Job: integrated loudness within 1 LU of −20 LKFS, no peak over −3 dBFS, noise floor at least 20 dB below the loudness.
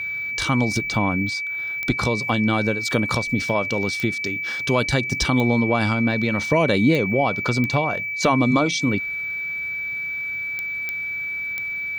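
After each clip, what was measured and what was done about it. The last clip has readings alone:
number of clicks 8; interfering tone 2,300 Hz; level of the tone −25 dBFS; integrated loudness −21.5 LKFS; sample peak −6.5 dBFS; target loudness −20.0 LKFS
→ click removal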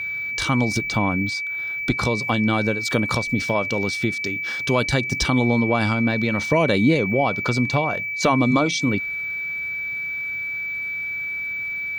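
number of clicks 0; interfering tone 2,300 Hz; level of the tone −25 dBFS
→ notch filter 2,300 Hz, Q 30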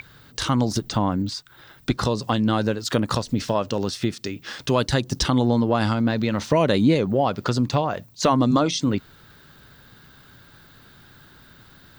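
interfering tone none found; integrated loudness −22.5 LKFS; sample peak −7.5 dBFS; target loudness −20.0 LKFS
→ level +2.5 dB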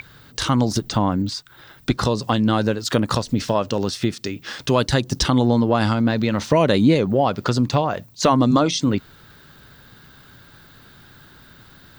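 integrated loudness −20.0 LKFS; sample peak −5.0 dBFS; background noise floor −49 dBFS

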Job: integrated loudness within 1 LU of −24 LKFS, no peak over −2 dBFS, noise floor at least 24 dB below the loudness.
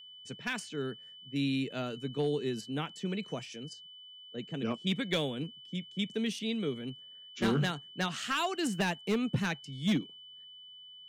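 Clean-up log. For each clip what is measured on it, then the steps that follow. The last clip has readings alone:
share of clipped samples 0.6%; peaks flattened at −23.0 dBFS; interfering tone 3,000 Hz; level of the tone −49 dBFS; integrated loudness −34.0 LKFS; sample peak −23.0 dBFS; target loudness −24.0 LKFS
→ clipped peaks rebuilt −23 dBFS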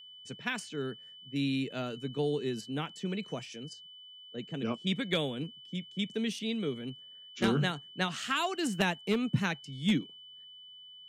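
share of clipped samples 0.0%; interfering tone 3,000 Hz; level of the tone −49 dBFS
→ notch filter 3,000 Hz, Q 30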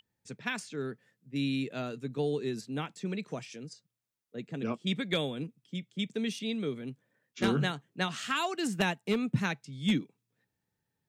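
interfering tone none found; integrated loudness −33.5 LKFS; sample peak −14.0 dBFS; target loudness −24.0 LKFS
→ level +9.5 dB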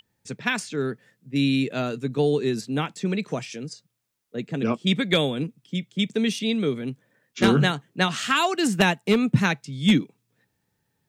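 integrated loudness −24.0 LKFS; sample peak −4.5 dBFS; background noise floor −75 dBFS

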